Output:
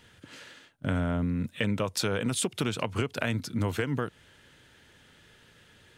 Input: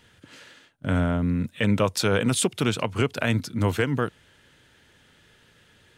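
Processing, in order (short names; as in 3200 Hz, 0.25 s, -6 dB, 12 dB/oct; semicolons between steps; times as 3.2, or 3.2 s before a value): compressor, threshold -25 dBFS, peak gain reduction 8.5 dB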